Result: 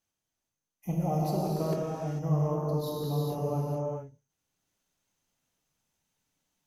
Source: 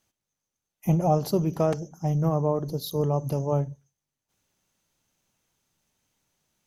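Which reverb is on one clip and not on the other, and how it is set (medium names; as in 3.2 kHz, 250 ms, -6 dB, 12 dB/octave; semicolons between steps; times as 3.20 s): gated-style reverb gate 470 ms flat, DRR -5 dB; trim -11 dB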